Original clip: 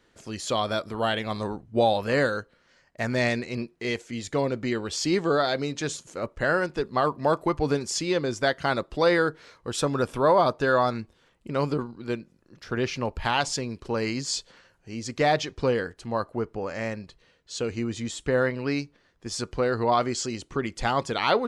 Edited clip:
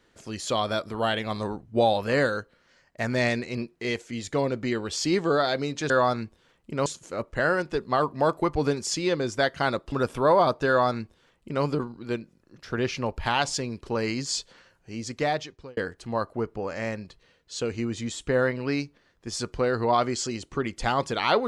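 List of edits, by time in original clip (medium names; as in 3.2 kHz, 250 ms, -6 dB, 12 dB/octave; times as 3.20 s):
8.96–9.91 s: delete
10.67–11.63 s: copy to 5.90 s
15.00–15.76 s: fade out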